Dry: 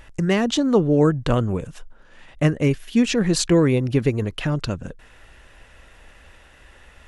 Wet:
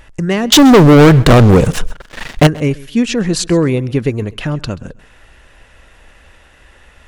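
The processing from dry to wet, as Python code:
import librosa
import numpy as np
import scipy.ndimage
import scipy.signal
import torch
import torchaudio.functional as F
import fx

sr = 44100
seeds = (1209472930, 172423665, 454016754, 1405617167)

p1 = fx.leveller(x, sr, passes=5, at=(0.52, 2.47))
p2 = p1 + fx.echo_feedback(p1, sr, ms=132, feedback_pct=26, wet_db=-21.5, dry=0)
y = p2 * librosa.db_to_amplitude(4.0)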